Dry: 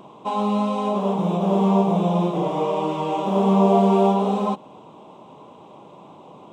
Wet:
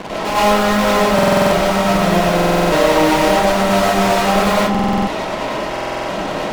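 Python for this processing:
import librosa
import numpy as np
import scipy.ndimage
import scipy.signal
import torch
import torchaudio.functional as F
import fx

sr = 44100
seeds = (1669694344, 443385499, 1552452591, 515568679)

y = fx.cvsd(x, sr, bps=32000)
y = scipy.signal.sosfilt(scipy.signal.butter(2, 3500.0, 'lowpass', fs=sr, output='sos'), y)
y = fx.notch(y, sr, hz=1200.0, q=9.4)
y = fx.fuzz(y, sr, gain_db=46.0, gate_db=-45.0)
y = fx.rev_freeverb(y, sr, rt60_s=0.46, hf_ratio=0.45, predelay_ms=70, drr_db=-8.0)
y = fx.buffer_glitch(y, sr, at_s=(1.14, 2.35, 4.7, 5.71), block=2048, repeats=7)
y = y * 10.0 ** (-8.0 / 20.0)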